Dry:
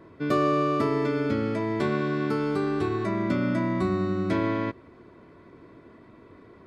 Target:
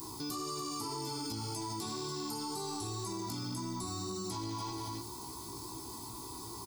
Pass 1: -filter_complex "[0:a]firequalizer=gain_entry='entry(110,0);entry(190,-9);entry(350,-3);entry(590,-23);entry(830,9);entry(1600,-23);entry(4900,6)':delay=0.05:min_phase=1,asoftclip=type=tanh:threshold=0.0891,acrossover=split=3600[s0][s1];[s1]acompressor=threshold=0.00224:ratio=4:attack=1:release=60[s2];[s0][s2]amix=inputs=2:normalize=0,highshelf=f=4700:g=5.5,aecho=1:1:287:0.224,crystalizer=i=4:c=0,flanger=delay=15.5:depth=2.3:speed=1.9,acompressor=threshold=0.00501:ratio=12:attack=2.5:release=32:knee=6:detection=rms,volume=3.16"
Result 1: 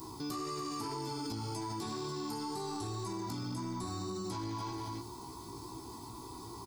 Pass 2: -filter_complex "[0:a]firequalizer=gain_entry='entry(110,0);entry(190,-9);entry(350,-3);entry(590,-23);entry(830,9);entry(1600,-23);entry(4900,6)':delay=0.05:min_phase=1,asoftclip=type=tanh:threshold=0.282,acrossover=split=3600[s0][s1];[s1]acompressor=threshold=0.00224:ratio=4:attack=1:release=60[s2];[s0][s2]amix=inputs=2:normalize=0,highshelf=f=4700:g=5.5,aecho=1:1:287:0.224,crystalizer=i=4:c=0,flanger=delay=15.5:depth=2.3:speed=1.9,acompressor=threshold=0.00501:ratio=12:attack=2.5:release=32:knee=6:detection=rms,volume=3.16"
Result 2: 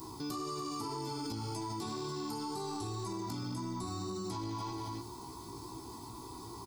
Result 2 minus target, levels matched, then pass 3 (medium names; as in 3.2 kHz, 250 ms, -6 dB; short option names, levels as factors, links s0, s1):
8 kHz band -5.5 dB
-filter_complex "[0:a]firequalizer=gain_entry='entry(110,0);entry(190,-9);entry(350,-3);entry(590,-23);entry(830,9);entry(1600,-23);entry(4900,6)':delay=0.05:min_phase=1,asoftclip=type=tanh:threshold=0.282,acrossover=split=3600[s0][s1];[s1]acompressor=threshold=0.00224:ratio=4:attack=1:release=60[s2];[s0][s2]amix=inputs=2:normalize=0,highshelf=f=4700:g=16,aecho=1:1:287:0.224,crystalizer=i=4:c=0,flanger=delay=15.5:depth=2.3:speed=1.9,acompressor=threshold=0.00501:ratio=12:attack=2.5:release=32:knee=6:detection=rms,volume=3.16"